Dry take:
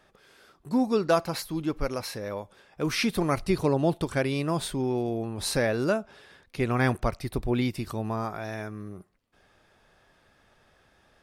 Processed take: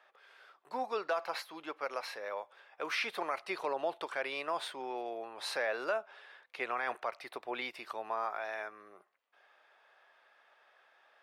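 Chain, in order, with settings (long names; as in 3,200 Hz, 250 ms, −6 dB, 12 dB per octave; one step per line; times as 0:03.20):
high-pass filter 400 Hz 12 dB per octave
three-way crossover with the lows and the highs turned down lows −19 dB, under 530 Hz, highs −16 dB, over 3,600 Hz
brickwall limiter −23.5 dBFS, peak gain reduction 10 dB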